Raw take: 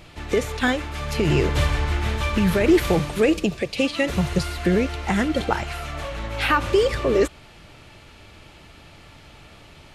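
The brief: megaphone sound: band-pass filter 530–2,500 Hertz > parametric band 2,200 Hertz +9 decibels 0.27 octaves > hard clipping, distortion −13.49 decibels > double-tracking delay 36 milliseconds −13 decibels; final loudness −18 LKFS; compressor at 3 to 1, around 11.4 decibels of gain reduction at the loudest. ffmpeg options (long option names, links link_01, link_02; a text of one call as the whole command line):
ffmpeg -i in.wav -filter_complex "[0:a]acompressor=threshold=-28dB:ratio=3,highpass=530,lowpass=2500,equalizer=frequency=2200:width_type=o:width=0.27:gain=9,asoftclip=type=hard:threshold=-27.5dB,asplit=2[link_01][link_02];[link_02]adelay=36,volume=-13dB[link_03];[link_01][link_03]amix=inputs=2:normalize=0,volume=16.5dB" out.wav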